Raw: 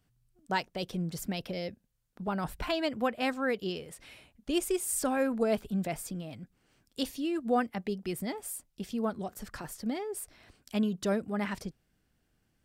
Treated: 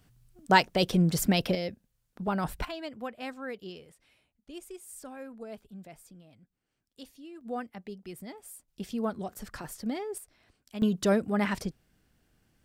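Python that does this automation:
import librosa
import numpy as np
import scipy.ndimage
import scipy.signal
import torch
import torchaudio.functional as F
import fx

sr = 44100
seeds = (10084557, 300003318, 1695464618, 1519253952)

y = fx.gain(x, sr, db=fx.steps((0.0, 10.0), (1.55, 3.0), (2.65, -8.0), (3.92, -14.5), (7.41, -8.0), (8.68, 0.5), (10.18, -7.5), (10.82, 5.0)))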